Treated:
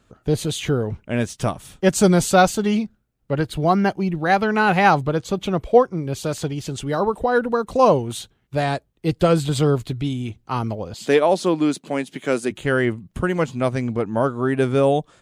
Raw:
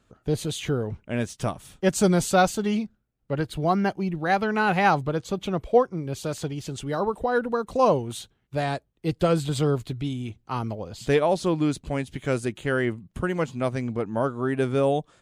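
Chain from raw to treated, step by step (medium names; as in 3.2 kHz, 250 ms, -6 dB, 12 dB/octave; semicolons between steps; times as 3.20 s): 10.94–12.51 s: high-pass 190 Hz 24 dB/octave; trim +5 dB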